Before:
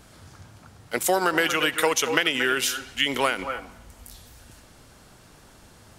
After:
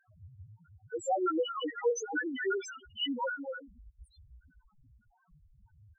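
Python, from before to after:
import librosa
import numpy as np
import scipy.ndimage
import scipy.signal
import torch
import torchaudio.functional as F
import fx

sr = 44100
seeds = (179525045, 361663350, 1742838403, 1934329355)

y = fx.spec_dropout(x, sr, seeds[0], share_pct=33)
y = y + 10.0 ** (-18.5 / 20.0) * np.pad(y, (int(84 * sr / 1000.0), 0))[:len(y)]
y = fx.spec_topn(y, sr, count=1)
y = y * 10.0 ** (3.0 / 20.0)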